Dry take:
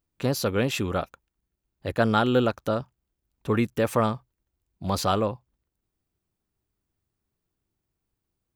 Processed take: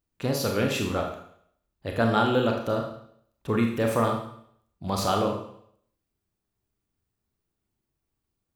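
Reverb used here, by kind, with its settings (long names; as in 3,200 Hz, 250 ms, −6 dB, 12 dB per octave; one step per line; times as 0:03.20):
four-comb reverb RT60 0.65 s, combs from 27 ms, DRR 1.5 dB
level −2.5 dB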